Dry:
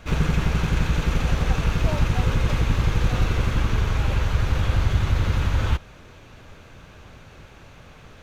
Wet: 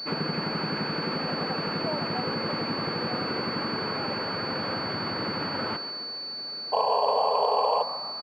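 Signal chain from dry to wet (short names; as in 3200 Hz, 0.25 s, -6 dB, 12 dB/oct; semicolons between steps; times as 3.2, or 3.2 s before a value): HPF 200 Hz 24 dB/oct; compressor, threshold -27 dBFS, peak gain reduction 4.5 dB; painted sound noise, 6.72–7.83, 410–1100 Hz -26 dBFS; frequency-shifting echo 0.142 s, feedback 57%, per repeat +56 Hz, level -12 dB; pulse-width modulation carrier 4500 Hz; gain +2 dB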